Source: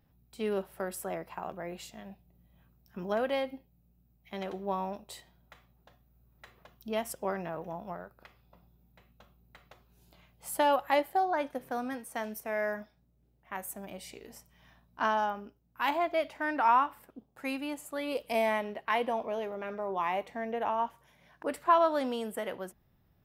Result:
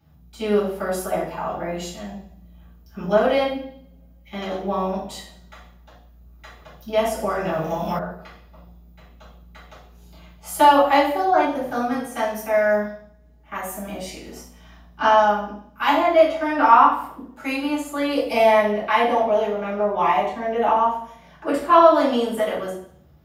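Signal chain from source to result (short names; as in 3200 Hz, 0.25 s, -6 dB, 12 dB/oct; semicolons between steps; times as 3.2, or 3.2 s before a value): reverb RT60 0.60 s, pre-delay 3 ms, DRR -10 dB; 7.05–7.99 three-band squash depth 100%; gain -2.5 dB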